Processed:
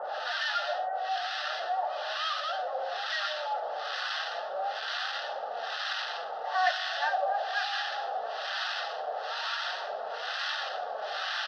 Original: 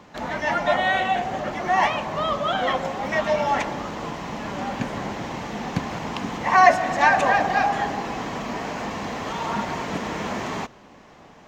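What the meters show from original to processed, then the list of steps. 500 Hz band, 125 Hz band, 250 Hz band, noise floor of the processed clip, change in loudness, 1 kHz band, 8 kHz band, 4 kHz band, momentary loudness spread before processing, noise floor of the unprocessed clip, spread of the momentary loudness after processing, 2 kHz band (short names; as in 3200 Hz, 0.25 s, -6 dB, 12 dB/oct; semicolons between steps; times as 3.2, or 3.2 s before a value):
-9.5 dB, under -40 dB, under -40 dB, -37 dBFS, -8.5 dB, -9.5 dB, -10.5 dB, +1.0 dB, 13 LU, -49 dBFS, 6 LU, -7.5 dB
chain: delta modulation 32 kbps, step -14 dBFS; HPF 680 Hz 24 dB/oct; tilt shelf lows +3 dB, about 1300 Hz; harmonic tremolo 1.1 Hz, depth 100%, crossover 970 Hz; flange 0.38 Hz, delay 3.3 ms, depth 3.7 ms, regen +67%; fixed phaser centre 1500 Hz, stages 8; on a send: echo 1.199 s -20 dB; on the sum: gain +1 dB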